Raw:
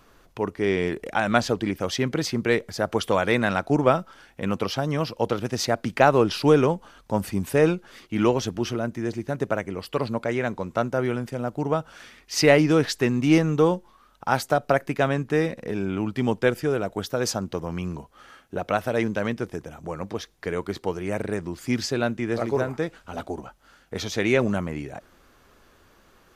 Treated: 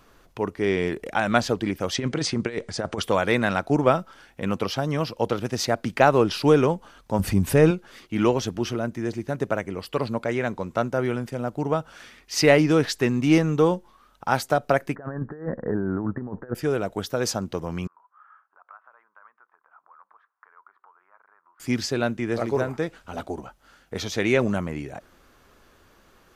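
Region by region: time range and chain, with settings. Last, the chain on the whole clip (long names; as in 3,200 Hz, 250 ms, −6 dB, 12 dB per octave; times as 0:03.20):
0:01.94–0:03.02: Butterworth low-pass 9,800 Hz 96 dB per octave + compressor whose output falls as the input rises −25 dBFS, ratio −0.5
0:07.19–0:07.71: low-shelf EQ 170 Hz +11 dB + upward compression, threshold −19 dBFS
0:14.95–0:16.55: Butterworth low-pass 1,800 Hz 96 dB per octave + compressor whose output falls as the input rises −28 dBFS, ratio −0.5
0:17.87–0:21.60: downward compressor 3 to 1, threshold −39 dBFS + flat-topped band-pass 1,200 Hz, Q 2.4 + high-frequency loss of the air 170 metres
whole clip: no processing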